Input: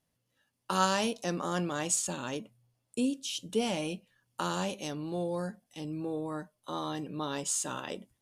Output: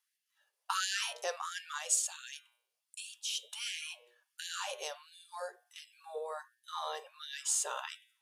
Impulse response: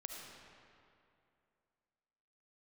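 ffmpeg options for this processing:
-filter_complex "[0:a]bandreject=f=120.4:t=h:w=4,bandreject=f=240.8:t=h:w=4,bandreject=f=361.2:t=h:w=4,bandreject=f=481.6:t=h:w=4,bandreject=f=602:t=h:w=4,bandreject=f=722.4:t=h:w=4,bandreject=f=842.8:t=h:w=4,bandreject=f=963.2:t=h:w=4,bandreject=f=1.0836k:t=h:w=4,bandreject=f=1.204k:t=h:w=4,bandreject=f=1.3244k:t=h:w=4,bandreject=f=1.4448k:t=h:w=4,bandreject=f=1.5652k:t=h:w=4,bandreject=f=1.6856k:t=h:w=4,bandreject=f=1.806k:t=h:w=4,bandreject=f=1.9264k:t=h:w=4,bandreject=f=2.0468k:t=h:w=4,bandreject=f=2.1672k:t=h:w=4,bandreject=f=2.2876k:t=h:w=4,bandreject=f=2.408k:t=h:w=4,bandreject=f=2.5284k:t=h:w=4,bandreject=f=2.6488k:t=h:w=4,bandreject=f=2.7692k:t=h:w=4,bandreject=f=2.8896k:t=h:w=4,bandreject=f=3.01k:t=h:w=4,bandreject=f=3.1304k:t=h:w=4,bandreject=f=3.2508k:t=h:w=4,bandreject=f=3.3712k:t=h:w=4,bandreject=f=3.4916k:t=h:w=4,bandreject=f=3.612k:t=h:w=4,bandreject=f=3.7324k:t=h:w=4,bandreject=f=3.8528k:t=h:w=4,asettb=1/sr,asplit=3[a][b][c];[a]atrim=end=1.784[d];[b]atrim=start=1.78:end=3.08,asetpts=PTS-STARTPTS,afade=t=in:d=0.004:c=qsin,afade=t=out:st=1.296:d=0.004:c=qsin,equalizer=f=900:w=0.64:g=-10[e];[c]atrim=start=3.076[f];[d][e]acrossfade=d=0.004:c1=hsin:c2=qsin[g];[g][f]acrossfade=d=0.004:c1=qsin:c2=hsin,afftfilt=real='re*gte(b*sr/1024,380*pow(1600/380,0.5+0.5*sin(2*PI*1.4*pts/sr)))':imag='im*gte(b*sr/1024,380*pow(1600/380,0.5+0.5*sin(2*PI*1.4*pts/sr)))':win_size=1024:overlap=0.75"

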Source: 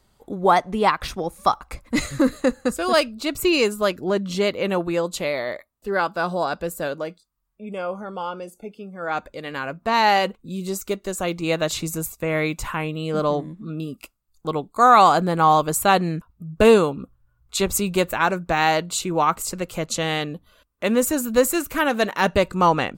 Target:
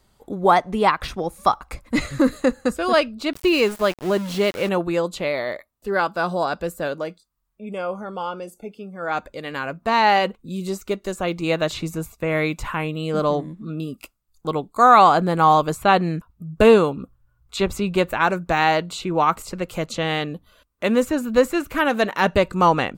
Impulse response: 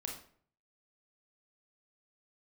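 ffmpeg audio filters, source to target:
-filter_complex "[0:a]acrossover=split=4200[a][b];[b]acompressor=threshold=-42dB:ratio=6[c];[a][c]amix=inputs=2:normalize=0,asettb=1/sr,asplit=3[d][e][f];[d]atrim=end=3.334[g];[e]atrim=start=3.33:end=4.69,asetpts=PTS-STARTPTS,afade=t=in:d=0.004:c=qsin,afade=t=out:st=1.356:d=0.004:c=qsin,aeval=exprs='val(0)*gte(abs(val(0)),0.0266)':c=same[h];[f]atrim=start=4.686[i];[g][h]acrossfade=d=0.004:c1=hsin:c2=qsin[j];[j][i]acrossfade=d=0.004:c1=qsin:c2=hsin,volume=1dB"

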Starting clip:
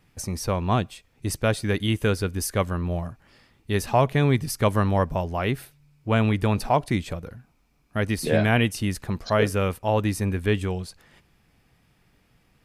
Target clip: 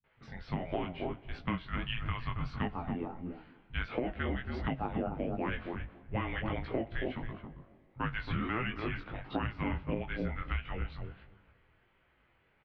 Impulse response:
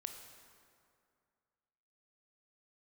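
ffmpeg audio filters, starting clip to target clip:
-filter_complex "[0:a]asplit=2[a][b];[b]adelay=274,lowpass=f=820:p=1,volume=-5dB,asplit=2[c][d];[d]adelay=274,lowpass=f=820:p=1,volume=0.16,asplit=2[e][f];[f]adelay=274,lowpass=f=820:p=1,volume=0.16[g];[c][e][g]amix=inputs=3:normalize=0[h];[a][h]amix=inputs=2:normalize=0,flanger=delay=7.9:depth=4.5:regen=54:speed=0.43:shape=triangular,asplit=2[i][j];[1:a]atrim=start_sample=2205,asetrate=39690,aresample=44100[k];[j][k]afir=irnorm=-1:irlink=0,volume=-13dB[l];[i][l]amix=inputs=2:normalize=0,flanger=delay=18:depth=3.9:speed=1.5,alimiter=limit=-17.5dB:level=0:latency=1:release=247,acrossover=split=250[m][n];[n]adelay=40[o];[m][o]amix=inputs=2:normalize=0,highpass=f=300:t=q:w=0.5412,highpass=f=300:t=q:w=1.307,lowpass=f=3.5k:t=q:w=0.5176,lowpass=f=3.5k:t=q:w=0.7071,lowpass=f=3.5k:t=q:w=1.932,afreqshift=-350,acompressor=threshold=-33dB:ratio=10,volume=3.5dB"

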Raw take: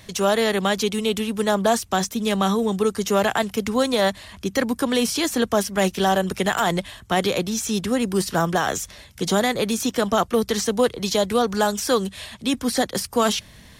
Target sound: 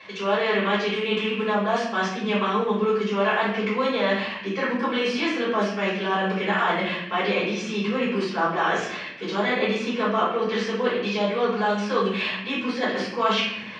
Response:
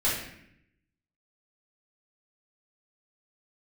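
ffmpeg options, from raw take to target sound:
-filter_complex "[0:a]areverse,acompressor=threshold=-30dB:ratio=6,areverse,highpass=f=200:w=0.5412,highpass=f=200:w=1.3066,equalizer=f=260:t=q:w=4:g=-8,equalizer=f=620:t=q:w=4:g=-4,equalizer=f=1.1k:t=q:w=4:g=6,equalizer=f=2.5k:t=q:w=4:g=7,equalizer=f=3.8k:t=q:w=4:g=-6,lowpass=f=4.1k:w=0.5412,lowpass=f=4.1k:w=1.3066[a];[1:a]atrim=start_sample=2205[b];[a][b]afir=irnorm=-1:irlink=0"

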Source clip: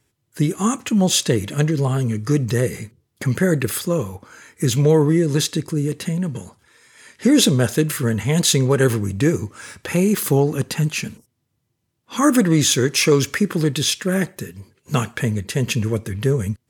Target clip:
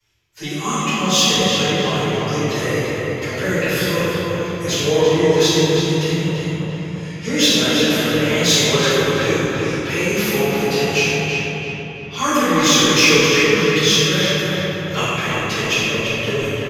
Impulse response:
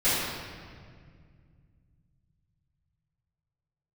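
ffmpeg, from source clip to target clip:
-filter_complex "[0:a]acrossover=split=100|930|7400[a][b][c][d];[a]aeval=exprs='0.0596*sin(PI/2*3.55*val(0)/0.0596)':c=same[e];[c]aexciter=amount=1.3:drive=5.4:freq=4.9k[f];[e][b][f][d]amix=inputs=4:normalize=0,acrossover=split=490 2500:gain=0.178 1 0.141[g][h][i];[g][h][i]amix=inputs=3:normalize=0,asplit=2[j][k];[k]adelay=337,lowpass=f=2.7k:p=1,volume=-3dB,asplit=2[l][m];[m]adelay=337,lowpass=f=2.7k:p=1,volume=0.52,asplit=2[n][o];[o]adelay=337,lowpass=f=2.7k:p=1,volume=0.52,asplit=2[p][q];[q]adelay=337,lowpass=f=2.7k:p=1,volume=0.52,asplit=2[r][s];[s]adelay=337,lowpass=f=2.7k:p=1,volume=0.52,asplit=2[t][u];[u]adelay=337,lowpass=f=2.7k:p=1,volume=0.52,asplit=2[v][w];[w]adelay=337,lowpass=f=2.7k:p=1,volume=0.52[x];[j][l][n][p][r][t][v][x]amix=inputs=8:normalize=0[y];[1:a]atrim=start_sample=2205,asetrate=27783,aresample=44100[z];[y][z]afir=irnorm=-1:irlink=0,aexciter=amount=5.3:drive=7.1:freq=2.4k,equalizer=f=10k:t=o:w=0.42:g=-13,volume=-12.5dB"

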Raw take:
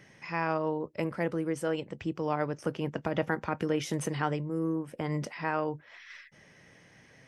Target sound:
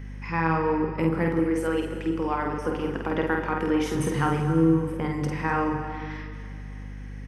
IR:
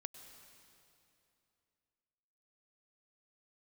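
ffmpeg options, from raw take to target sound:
-filter_complex "[0:a]equalizer=f=5.5k:w=0.45:g=-9.5,acontrast=85,equalizer=f=630:w=4.5:g=-14,bandreject=f=50:t=h:w=6,bandreject=f=100:t=h:w=6,bandreject=f=150:t=h:w=6,bandreject=f=200:t=h:w=6,bandreject=f=250:t=h:w=6,bandreject=f=300:t=h:w=6,bandreject=f=350:t=h:w=6,bandreject=f=400:t=h:w=6,bandreject=f=450:t=h:w=6[a];[1:a]atrim=start_sample=2205,asetrate=52920,aresample=44100[b];[a][b]afir=irnorm=-1:irlink=0,acontrast=84,asettb=1/sr,asplit=3[c][d][e];[c]atrim=end=1.394[f];[d]atrim=start=1.39:end=3.95,asetpts=PTS-STARTPTS,afade=t=in:d=0.004:c=qsin,afade=t=out:st=2.556:d=0.004:c=qsin,highpass=270[g];[e]atrim=start=3.946[h];[f][g]acrossfade=d=0.004:c1=hsin:c2=qsin[i];[i][h]acrossfade=d=0.004:c1=qsin:c2=hsin,aecho=1:1:49|251:0.668|0.141,aeval=exprs='val(0)+0.0158*(sin(2*PI*50*n/s)+sin(2*PI*2*50*n/s)/2+sin(2*PI*3*50*n/s)/3+sin(2*PI*4*50*n/s)/4+sin(2*PI*5*50*n/s)/5)':c=same"

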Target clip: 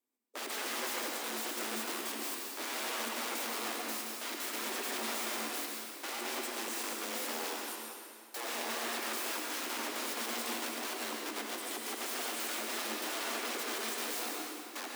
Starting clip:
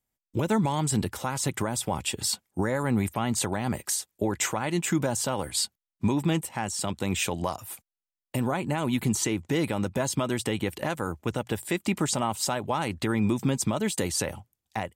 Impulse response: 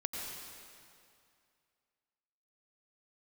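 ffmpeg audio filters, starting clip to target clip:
-filter_complex "[0:a]aeval=exprs='(mod(29.9*val(0)+1,2)-1)/29.9':c=same,afreqshift=220,acrusher=bits=9:mode=log:mix=0:aa=0.000001[a];[1:a]atrim=start_sample=2205[b];[a][b]afir=irnorm=-1:irlink=0,volume=-4.5dB"

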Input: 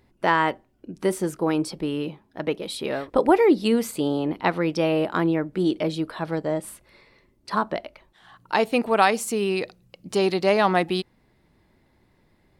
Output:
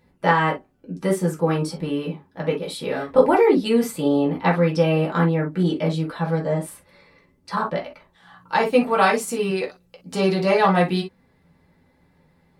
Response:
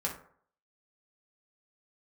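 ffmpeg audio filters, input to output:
-filter_complex "[0:a]asettb=1/sr,asplit=3[a][b][c];[a]atrim=end=9.504[d];[b]atrim=start=9.5:end=10.12,asetpts=PTS-STARTPTS,afade=t=in:d=0.004:c=qsin,afade=t=out:st=0.616:d=0.004:c=qsin,equalizer=f=150:w=1.3:g=-9.5[e];[c]atrim=start=10.116[f];[d][e]acrossfade=d=0.004:c1=hsin:c2=qsin[g];[g][f]acrossfade=d=0.004:c1=qsin:c2=hsin[h];[1:a]atrim=start_sample=2205,atrim=end_sample=3087[i];[h][i]afir=irnorm=-1:irlink=0,volume=-1.5dB"

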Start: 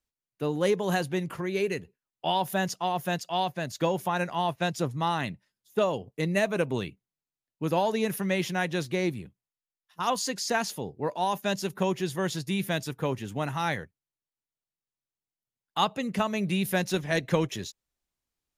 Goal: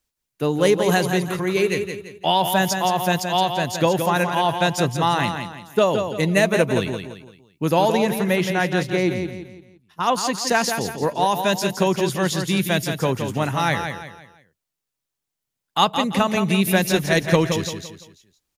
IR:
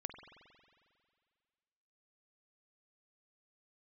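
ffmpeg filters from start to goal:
-af "asetnsamples=n=441:p=0,asendcmd='7.97 highshelf g -4.5;10.47 highshelf g 2.5',highshelf=f=3.9k:g=4,aecho=1:1:170|340|510|680:0.447|0.165|0.0612|0.0226,volume=7.5dB"

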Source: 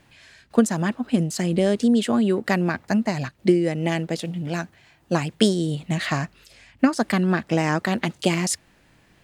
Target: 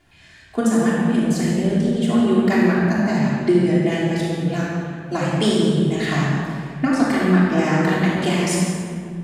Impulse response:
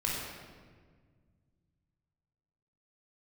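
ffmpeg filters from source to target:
-filter_complex "[0:a]asettb=1/sr,asplit=3[a][b][c];[a]atrim=end=1.454[d];[b]atrim=start=1.45:end=2.08,asetpts=PTS-STARTPTS,afade=t=in:d=0.004:c=qsin,afade=t=out:st=0.626:d=0.004:c=qsin,acrossover=split=300[e][f];[f]acompressor=threshold=-27dB:ratio=6[g];[e][g]amix=inputs=2:normalize=0[h];[c]atrim=start=2.076[i];[d][h]acrossfade=d=0.004:c1=hsin:c2=qsin[j];[j][i]acrossfade=d=0.004:c1=qsin:c2=hsin[k];[1:a]atrim=start_sample=2205,asetrate=29988,aresample=44100[l];[k][l]afir=irnorm=-1:irlink=0,volume=-6dB"

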